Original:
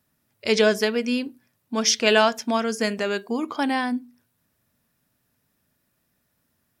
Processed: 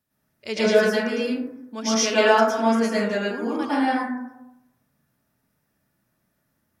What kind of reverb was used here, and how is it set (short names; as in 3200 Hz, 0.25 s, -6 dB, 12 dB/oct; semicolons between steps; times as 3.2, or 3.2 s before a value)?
plate-style reverb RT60 0.9 s, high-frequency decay 0.3×, pre-delay 95 ms, DRR -9 dB; gain -9 dB